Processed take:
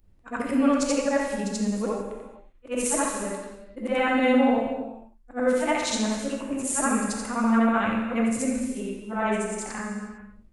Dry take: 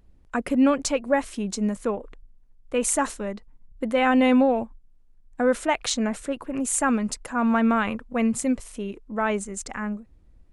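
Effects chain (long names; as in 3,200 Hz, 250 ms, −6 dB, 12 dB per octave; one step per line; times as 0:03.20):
every overlapping window played backwards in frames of 177 ms
reverb whose tail is shaped and stops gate 480 ms falling, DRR 1 dB
level that may rise only so fast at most 390 dB per second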